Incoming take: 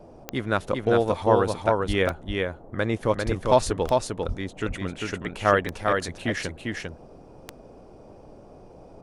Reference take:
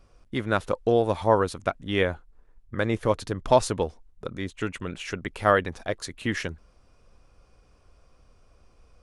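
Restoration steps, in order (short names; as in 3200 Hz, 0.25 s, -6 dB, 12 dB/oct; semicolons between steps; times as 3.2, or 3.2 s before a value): de-click; 1.87–1.99 HPF 140 Hz 24 dB/oct; 3.25–3.37 HPF 140 Hz 24 dB/oct; 4.27–4.39 HPF 140 Hz 24 dB/oct; noise print and reduce 11 dB; inverse comb 0.398 s -3.5 dB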